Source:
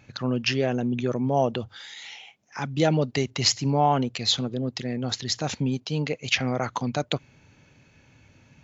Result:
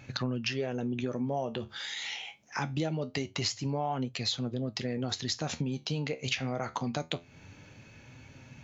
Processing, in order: flange 0.24 Hz, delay 7.2 ms, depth 8.4 ms, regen +64%; compression 6:1, threshold -38 dBFS, peak gain reduction 17.5 dB; trim +8 dB

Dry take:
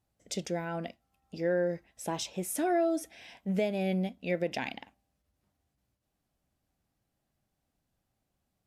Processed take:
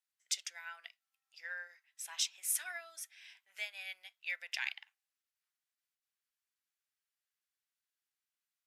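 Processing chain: high-pass 1.4 kHz 24 dB/octave; upward expansion 1.5:1, over -54 dBFS; trim +4 dB

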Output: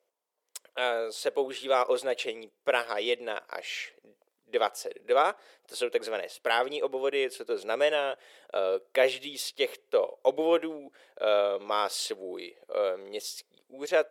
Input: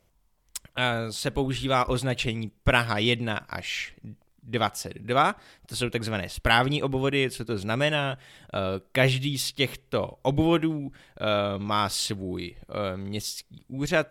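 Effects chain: level rider gain up to 6 dB; ladder high-pass 420 Hz, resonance 60%

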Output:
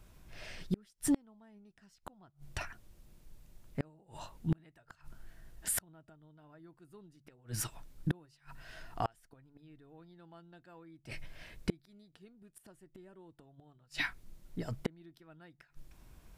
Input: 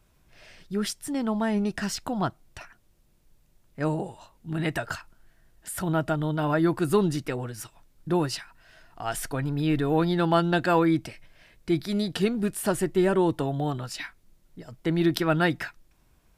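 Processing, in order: bass shelf 180 Hz +4.5 dB; de-hum 71.63 Hz, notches 2; inverted gate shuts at -22 dBFS, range -37 dB; trim +2.5 dB

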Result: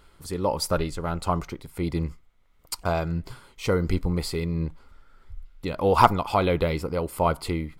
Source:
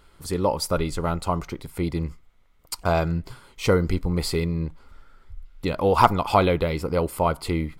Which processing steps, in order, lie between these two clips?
tremolo 1.5 Hz, depth 40%; 0.63–1.35 s: loudspeaker Doppler distortion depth 0.14 ms

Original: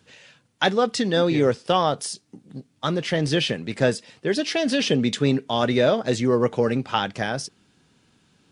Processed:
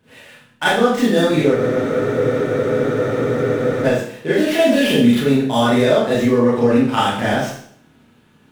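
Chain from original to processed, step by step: median filter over 9 samples; compression, threshold -20 dBFS, peak gain reduction 6.5 dB; Schroeder reverb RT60 0.59 s, combs from 26 ms, DRR -9.5 dB; spectral freeze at 1.58 s, 2.26 s

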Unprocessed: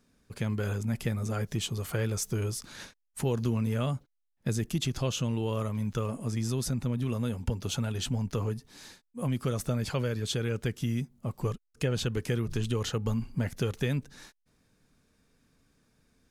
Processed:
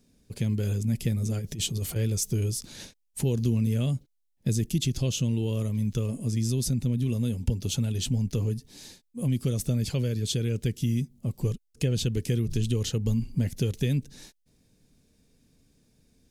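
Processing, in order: peaking EQ 1.3 kHz -14 dB 1.4 oct; 1.38–1.96 s: compressor with a negative ratio -34 dBFS, ratio -0.5; dynamic bell 800 Hz, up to -7 dB, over -50 dBFS, Q 0.88; trim +5 dB

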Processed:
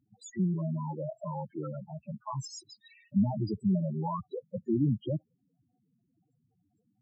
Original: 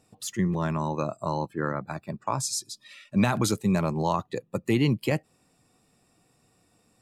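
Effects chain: loudest bins only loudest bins 4; trim -2.5 dB

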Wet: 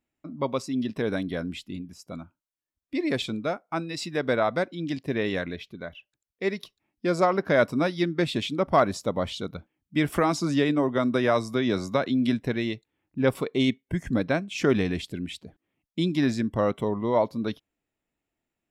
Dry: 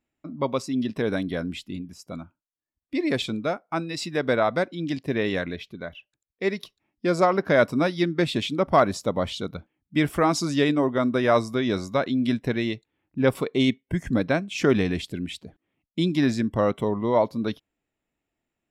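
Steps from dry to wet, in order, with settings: 10.12–12.43 s: three bands compressed up and down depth 70%; trim -2 dB

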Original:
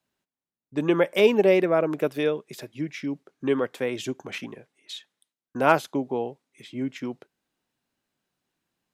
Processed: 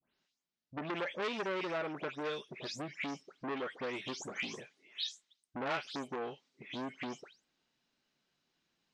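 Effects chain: delay that grows with frequency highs late, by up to 216 ms; low-pass 5.7 kHz 24 dB/octave; treble shelf 2.7 kHz +10 dB; compression 2.5:1, threshold -34 dBFS, peak gain reduction 14.5 dB; transformer saturation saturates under 1.9 kHz; trim -1.5 dB

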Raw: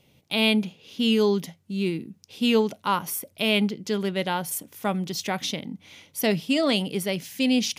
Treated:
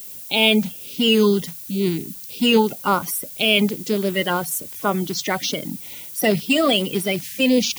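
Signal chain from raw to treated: coarse spectral quantiser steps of 30 dB; added noise violet -42 dBFS; trim +5.5 dB

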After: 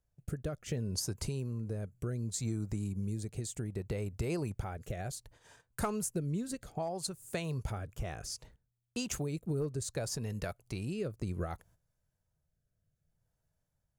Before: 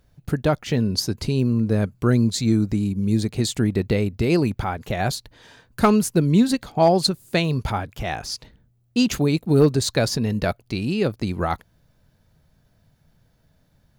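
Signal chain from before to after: gate -48 dBFS, range -13 dB; graphic EQ 250/2000/4000/8000 Hz -9/-3/-9/+8 dB; compression 6:1, threshold -27 dBFS, peak gain reduction 13.5 dB; rotary cabinet horn 0.65 Hz; trim -4 dB

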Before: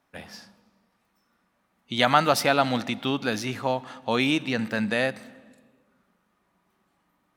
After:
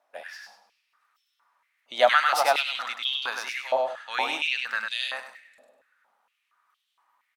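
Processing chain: vibrato 15 Hz 18 cents; on a send: feedback delay 100 ms, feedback 26%, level -4 dB; on the sum: step-sequenced high-pass 4.3 Hz 630–3300 Hz; trim -4.5 dB

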